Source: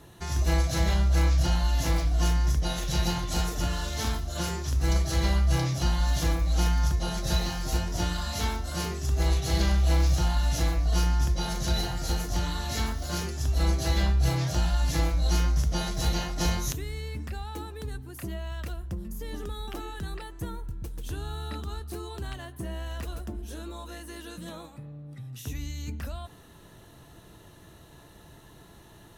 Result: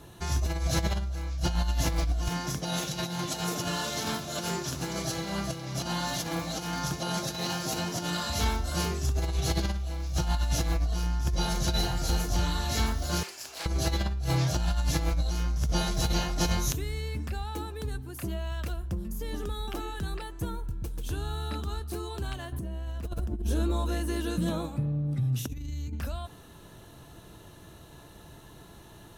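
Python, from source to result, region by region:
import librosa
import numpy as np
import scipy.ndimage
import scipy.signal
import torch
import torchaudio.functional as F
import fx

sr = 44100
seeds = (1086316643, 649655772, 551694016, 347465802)

y = fx.chain(x, sr, fx.highpass(hz=130.0, slope=24),
    fx.over_compress(threshold_db=-33.0, ratio=-0.5),
    fx.echo_multitap(ms=(362, 800), db=(-11.0, -18.5)), at=(2.28, 8.3))
y = fx.chain(y, sr, fx.lower_of_two(delay_ms=0.41),
    fx.highpass(hz=790.0, slope=12),
    fx.doppler_dist(depth_ms=0.22), at=(13.23, 13.66))
y = fx.chain(y, sr, fx.low_shelf(hz=480.0, db=9.5),
    fx.over_compress(threshold_db=-30.0, ratio=-0.5), at=(22.52, 25.93))
y = fx.notch(y, sr, hz=1900.0, q=12.0)
y = fx.over_compress(y, sr, threshold_db=-25.0, ratio=-0.5)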